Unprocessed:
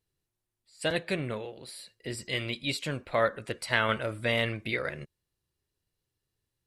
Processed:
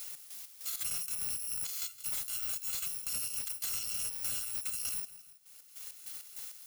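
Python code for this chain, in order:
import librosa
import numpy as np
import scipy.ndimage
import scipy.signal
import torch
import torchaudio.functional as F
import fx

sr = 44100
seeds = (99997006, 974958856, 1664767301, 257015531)

p1 = fx.bit_reversed(x, sr, seeds[0], block=128)
p2 = fx.highpass(p1, sr, hz=1400.0, slope=6)
p3 = fx.high_shelf(p2, sr, hz=3300.0, db=10.0)
p4 = fx.over_compress(p3, sr, threshold_db=-34.0, ratio=-1.0)
p5 = p3 + (p4 * 10.0 ** (-2.0 / 20.0))
p6 = fx.chopper(p5, sr, hz=3.3, depth_pct=65, duty_pct=50)
p7 = 10.0 ** (-26.5 / 20.0) * np.tanh(p6 / 10.0 ** (-26.5 / 20.0))
p8 = p7 + fx.echo_feedback(p7, sr, ms=163, feedback_pct=29, wet_db=-19.5, dry=0)
p9 = fx.band_squash(p8, sr, depth_pct=100)
y = p9 * 10.0 ** (-5.5 / 20.0)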